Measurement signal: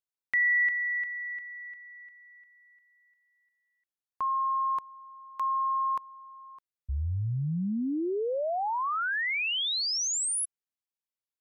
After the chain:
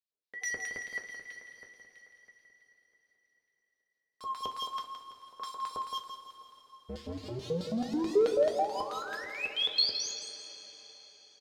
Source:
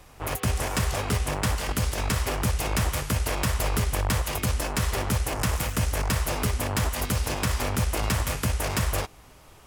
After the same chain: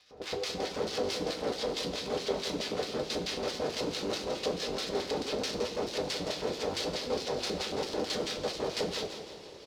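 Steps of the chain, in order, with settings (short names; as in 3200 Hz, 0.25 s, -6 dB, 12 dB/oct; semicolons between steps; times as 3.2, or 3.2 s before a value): steep low-pass 6400 Hz 36 dB/oct; tilt shelf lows +4 dB, about 1100 Hz; short-mantissa float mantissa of 2-bit; rotary speaker horn 6 Hz; wavefolder -27.5 dBFS; LFO band-pass square 4.6 Hz 470–4300 Hz; feedback echo 0.167 s, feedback 43%, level -9.5 dB; two-slope reverb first 0.26 s, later 4.7 s, from -19 dB, DRR 2 dB; gain +7.5 dB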